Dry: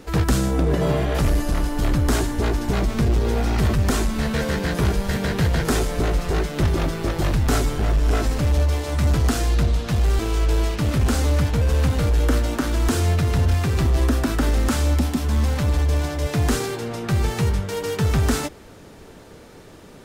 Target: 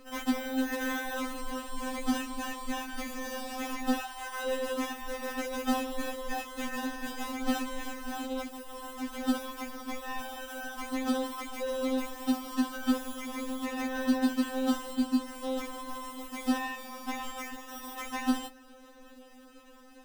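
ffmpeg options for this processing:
-filter_complex "[0:a]acrusher=samples=20:mix=1:aa=0.000001,asettb=1/sr,asplit=3[s0][s1][s2];[s0]atrim=end=3.994[s3];[s1]atrim=start=3.99:end=4.46,asetpts=PTS-STARTPTS,afade=t=in:d=0.004:c=qsin,afade=t=out:st=0.466:d=0.004:c=qsin,lowshelf=f=560:t=q:w=3:g=-13[s4];[s2]atrim=start=4.456[s5];[s3][s4]acrossfade=d=0.004:c1=hsin:c2=qsin[s6];[s6][s5]acrossfade=d=0.004:c1=qsin:c2=hsin,asettb=1/sr,asplit=3[s7][s8][s9];[s7]atrim=end=8.114[s10];[s8]atrim=start=8.11:end=9.2,asetpts=PTS-STARTPTS,afade=t=in:d=0.004:c=qsin,afade=t=out:st=1.086:d=0.004:c=qsin,volume=10,asoftclip=hard,volume=0.1[s11];[s9]atrim=start=9.196[s12];[s10][s11]acrossfade=d=0.004:c1=hsin:c2=qsin[s13];[s13][s12]acrossfade=d=0.004:c1=qsin:c2=hsin,afftfilt=real='re*3.46*eq(mod(b,12),0)':imag='im*3.46*eq(mod(b,12),0)':win_size=2048:overlap=0.75,volume=0.501"

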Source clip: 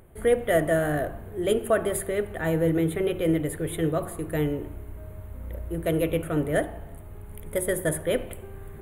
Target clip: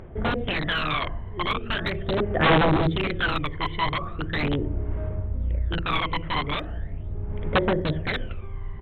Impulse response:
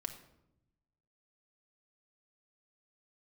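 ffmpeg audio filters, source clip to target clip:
-af "alimiter=limit=0.106:level=0:latency=1:release=103,aresample=8000,aeval=exprs='(mod(13.3*val(0)+1,2)-1)/13.3':c=same,aresample=44100,aphaser=in_gain=1:out_gain=1:delay=1:decay=0.73:speed=0.4:type=sinusoidal"

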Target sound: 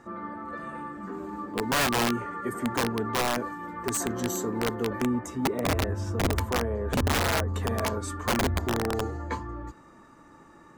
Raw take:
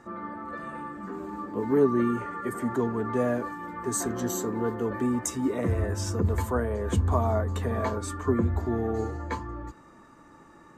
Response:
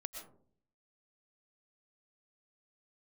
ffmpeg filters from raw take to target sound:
-filter_complex "[0:a]asettb=1/sr,asplit=3[s0][s1][s2];[s0]atrim=end=5.064[s3];[s1]atrim=start=5.06:end=7.54,asetpts=PTS-STARTPTS,afade=t=in:d=0.004:c=qsin,afade=t=out:st=2.476:d=0.004:c=qsin,equalizer=f=8900:w=0.36:g=-13[s4];[s2]atrim=start=7.536[s5];[s3][s4]acrossfade=d=0.004:c1=hsin:c2=qsin[s6];[s6][s5]acrossfade=d=0.004:c1=qsin:c2=hsin,aeval=exprs='(mod(8.91*val(0)+1,2)-1)/8.91':c=same"

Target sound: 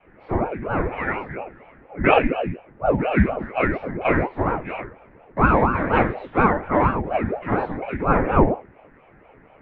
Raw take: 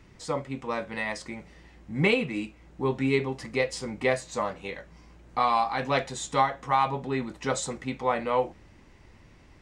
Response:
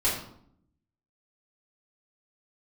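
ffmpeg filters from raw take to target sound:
-filter_complex "[1:a]atrim=start_sample=2205,atrim=end_sample=6174[s0];[0:a][s0]afir=irnorm=-1:irlink=0,highpass=f=160:t=q:w=0.5412,highpass=f=160:t=q:w=1.307,lowpass=f=2400:t=q:w=0.5176,lowpass=f=2400:t=q:w=0.7071,lowpass=f=2400:t=q:w=1.932,afreqshift=-350,aeval=exprs='val(0)*sin(2*PI*420*n/s+420*0.7/4.2*sin(2*PI*4.2*n/s))':c=same"

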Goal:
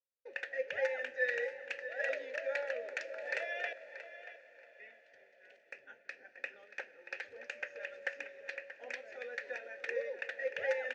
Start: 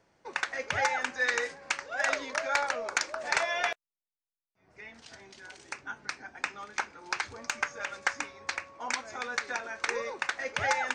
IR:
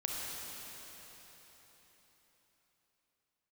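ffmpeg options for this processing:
-filter_complex "[0:a]asplit=3[s0][s1][s2];[s0]bandpass=f=530:t=q:w=8,volume=1[s3];[s1]bandpass=f=1840:t=q:w=8,volume=0.501[s4];[s2]bandpass=f=2480:t=q:w=8,volume=0.355[s5];[s3][s4][s5]amix=inputs=3:normalize=0,agate=range=0.0224:threshold=0.00158:ratio=3:detection=peak,asplit=2[s6][s7];[s7]adelay=632,lowpass=f=4700:p=1,volume=0.251,asplit=2[s8][s9];[s9]adelay=632,lowpass=f=4700:p=1,volume=0.25,asplit=2[s10][s11];[s11]adelay=632,lowpass=f=4700:p=1,volume=0.25[s12];[s6][s8][s10][s12]amix=inputs=4:normalize=0,asplit=2[s13][s14];[1:a]atrim=start_sample=2205,asetrate=24255,aresample=44100,lowshelf=f=210:g=10[s15];[s14][s15]afir=irnorm=-1:irlink=0,volume=0.0668[s16];[s13][s16]amix=inputs=2:normalize=0,volume=1.26"

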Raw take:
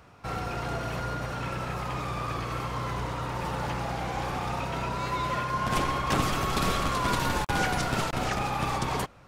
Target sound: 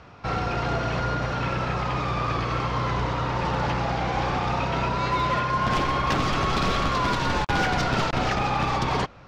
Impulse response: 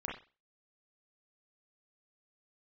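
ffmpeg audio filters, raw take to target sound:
-filter_complex "[0:a]lowpass=f=5700:w=0.5412,lowpass=f=5700:w=1.3066,asplit=2[s0][s1];[s1]aeval=exprs='0.0708*(abs(mod(val(0)/0.0708+3,4)-2)-1)':c=same,volume=0.562[s2];[s0][s2]amix=inputs=2:normalize=0,alimiter=limit=0.119:level=0:latency=1:release=416,volume=1.33"

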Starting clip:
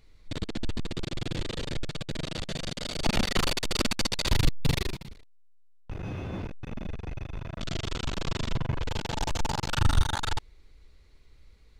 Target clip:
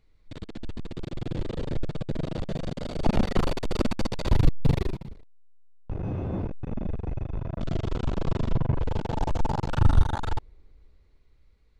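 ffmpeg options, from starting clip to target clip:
-filter_complex "[0:a]acrossover=split=1000[s0][s1];[s0]dynaudnorm=f=150:g=17:m=3.76[s2];[s1]highshelf=f=3100:g=-7.5[s3];[s2][s3]amix=inputs=2:normalize=0,volume=0.501"

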